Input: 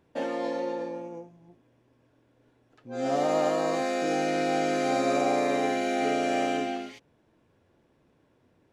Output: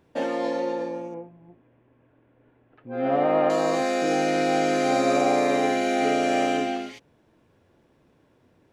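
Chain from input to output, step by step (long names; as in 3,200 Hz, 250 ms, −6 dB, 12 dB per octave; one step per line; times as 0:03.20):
0:01.14–0:03.50: low-pass filter 2,700 Hz 24 dB per octave
level +4 dB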